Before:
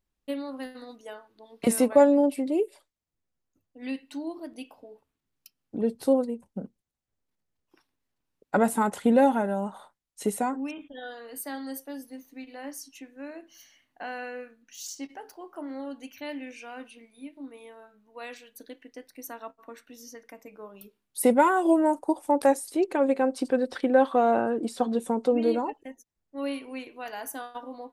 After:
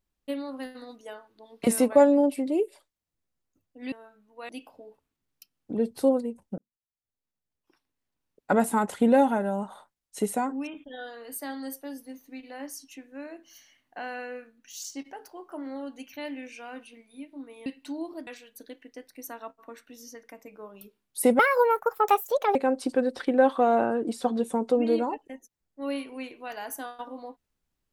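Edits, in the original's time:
3.92–4.53 s: swap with 17.70–18.27 s
6.62–8.56 s: fade in
21.39–23.11 s: speed 148%

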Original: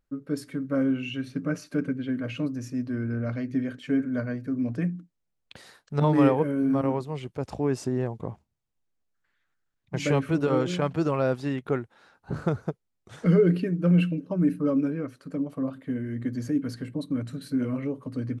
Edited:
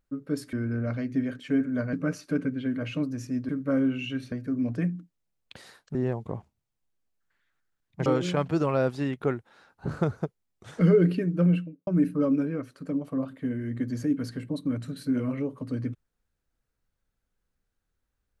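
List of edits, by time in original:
0.53–1.36 s: swap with 2.92–4.32 s
5.95–7.89 s: delete
10.00–10.51 s: delete
13.79–14.32 s: studio fade out

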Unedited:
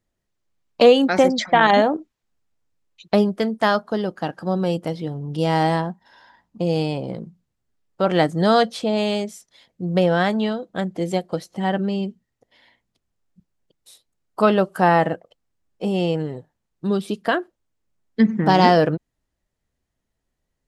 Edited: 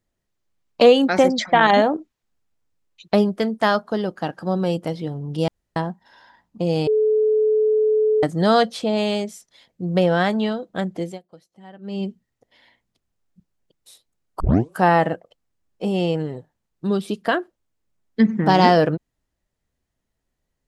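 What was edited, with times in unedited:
5.48–5.76 s: room tone
6.87–8.23 s: bleep 431 Hz -14.5 dBFS
10.96–12.04 s: dip -21 dB, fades 0.23 s
14.40 s: tape start 0.33 s

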